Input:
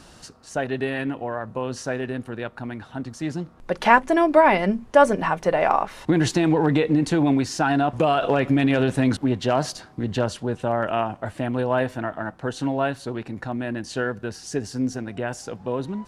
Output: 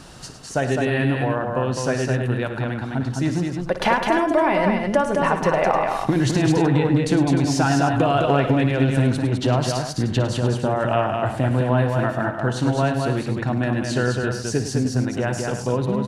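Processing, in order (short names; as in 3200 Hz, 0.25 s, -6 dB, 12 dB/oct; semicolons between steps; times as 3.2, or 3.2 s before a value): bell 130 Hz +9 dB 0.3 oct; compressor, threshold -21 dBFS, peak gain reduction 11.5 dB; tapped delay 57/105/208/304 ms -12.5/-11.5/-4/-11.5 dB; gain +4.5 dB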